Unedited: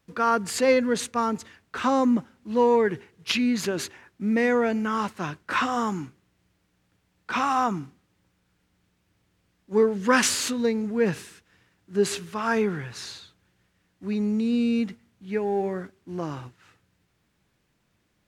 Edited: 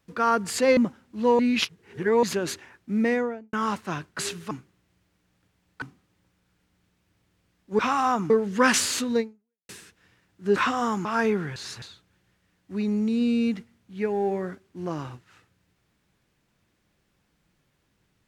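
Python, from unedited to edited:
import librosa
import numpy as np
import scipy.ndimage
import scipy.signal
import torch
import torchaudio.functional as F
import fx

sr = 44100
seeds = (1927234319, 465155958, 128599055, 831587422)

y = fx.studio_fade_out(x, sr, start_s=4.32, length_s=0.53)
y = fx.edit(y, sr, fx.cut(start_s=0.77, length_s=1.32),
    fx.reverse_span(start_s=2.71, length_s=0.84),
    fx.swap(start_s=5.51, length_s=0.49, other_s=12.05, other_length_s=0.32),
    fx.move(start_s=7.31, length_s=0.51, to_s=9.79),
    fx.fade_out_span(start_s=10.69, length_s=0.49, curve='exp'),
    fx.reverse_span(start_s=12.88, length_s=0.26), tone=tone)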